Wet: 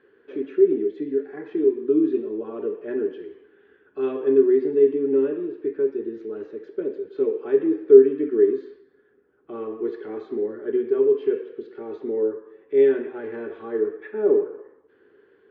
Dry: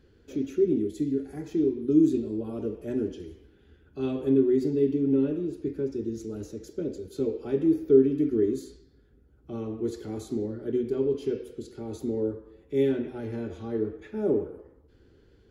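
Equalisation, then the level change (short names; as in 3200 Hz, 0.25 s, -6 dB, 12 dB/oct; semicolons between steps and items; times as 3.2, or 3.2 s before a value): air absorption 72 m; speaker cabinet 350–3100 Hz, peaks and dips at 410 Hz +9 dB, 1100 Hz +8 dB, 1700 Hz +10 dB; +2.0 dB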